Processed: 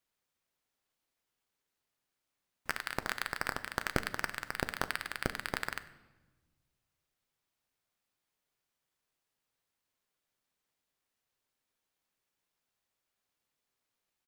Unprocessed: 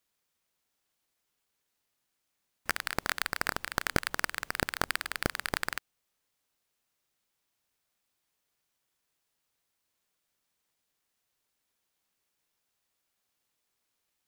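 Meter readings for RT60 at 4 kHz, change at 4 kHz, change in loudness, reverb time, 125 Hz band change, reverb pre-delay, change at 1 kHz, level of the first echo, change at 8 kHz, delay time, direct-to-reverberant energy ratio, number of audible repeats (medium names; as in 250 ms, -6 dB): 0.90 s, -5.0 dB, -4.0 dB, 1.2 s, -2.5 dB, 8 ms, -3.0 dB, -22.5 dB, -6.5 dB, 97 ms, 11.5 dB, 1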